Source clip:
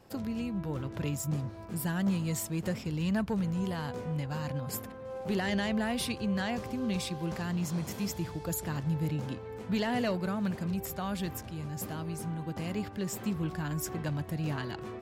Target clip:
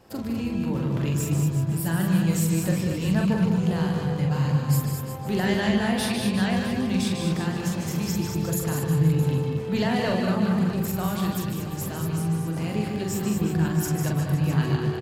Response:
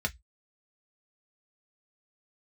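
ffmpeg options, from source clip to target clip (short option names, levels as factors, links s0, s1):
-filter_complex "[0:a]aecho=1:1:43|202|236|359|525|660:0.631|0.355|0.447|0.211|0.119|0.2,asplit=2[s0][s1];[1:a]atrim=start_sample=2205,asetrate=79380,aresample=44100,adelay=148[s2];[s1][s2]afir=irnorm=-1:irlink=0,volume=0.473[s3];[s0][s3]amix=inputs=2:normalize=0,volume=1.5"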